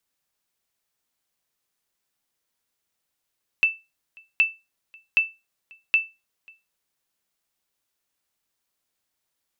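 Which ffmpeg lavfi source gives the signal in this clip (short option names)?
-f lavfi -i "aevalsrc='0.299*(sin(2*PI*2650*mod(t,0.77))*exp(-6.91*mod(t,0.77)/0.24)+0.0355*sin(2*PI*2650*max(mod(t,0.77)-0.54,0))*exp(-6.91*max(mod(t,0.77)-0.54,0)/0.24))':d=3.08:s=44100"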